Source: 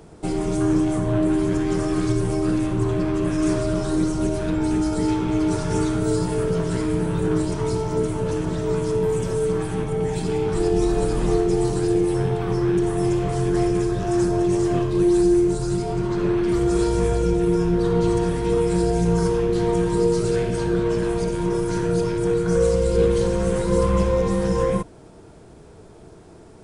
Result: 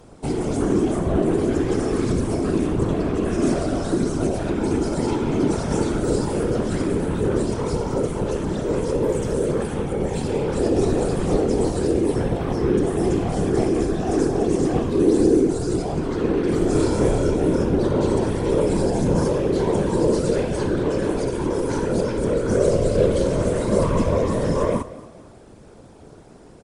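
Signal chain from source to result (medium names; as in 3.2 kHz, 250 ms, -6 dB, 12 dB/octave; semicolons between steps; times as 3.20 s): whisper effect; 16.59–17.63 s: doubling 29 ms -6 dB; on a send: frequency-shifting echo 228 ms, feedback 35%, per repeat +33 Hz, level -18 dB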